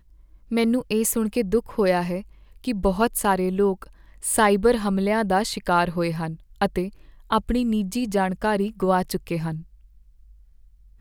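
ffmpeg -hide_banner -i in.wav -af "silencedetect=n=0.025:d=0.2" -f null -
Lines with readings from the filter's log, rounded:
silence_start: 0.00
silence_end: 0.52 | silence_duration: 0.52
silence_start: 2.21
silence_end: 2.64 | silence_duration: 0.43
silence_start: 3.83
silence_end: 4.23 | silence_duration: 0.40
silence_start: 6.35
silence_end: 6.62 | silence_duration: 0.27
silence_start: 6.89
silence_end: 7.30 | silence_duration: 0.42
silence_start: 9.60
silence_end: 11.00 | silence_duration: 1.40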